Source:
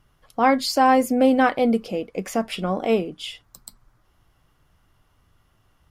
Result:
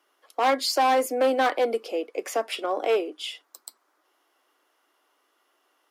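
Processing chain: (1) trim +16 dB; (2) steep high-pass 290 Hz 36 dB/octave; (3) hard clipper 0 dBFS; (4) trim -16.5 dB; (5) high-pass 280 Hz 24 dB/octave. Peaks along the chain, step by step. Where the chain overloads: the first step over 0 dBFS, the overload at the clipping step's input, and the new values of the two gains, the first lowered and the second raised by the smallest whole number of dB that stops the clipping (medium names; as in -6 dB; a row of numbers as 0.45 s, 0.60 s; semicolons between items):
+10.0 dBFS, +10.0 dBFS, 0.0 dBFS, -16.5 dBFS, -10.5 dBFS; step 1, 10.0 dB; step 1 +6 dB, step 4 -6.5 dB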